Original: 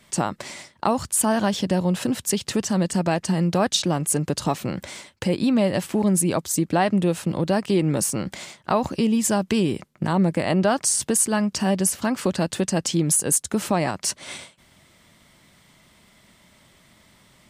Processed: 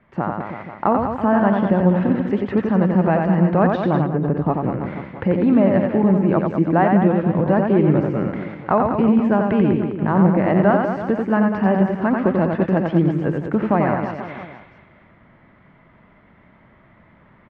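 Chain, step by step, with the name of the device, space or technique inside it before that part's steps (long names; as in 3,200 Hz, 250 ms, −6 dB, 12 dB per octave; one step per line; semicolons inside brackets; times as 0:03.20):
reverse bouncing-ball delay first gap 90 ms, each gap 1.2×, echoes 5
0:04.06–0:04.85: de-essing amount 95%
action camera in a waterproof case (low-pass filter 1,900 Hz 24 dB per octave; automatic gain control gain up to 4 dB; AAC 128 kbit/s 44,100 Hz)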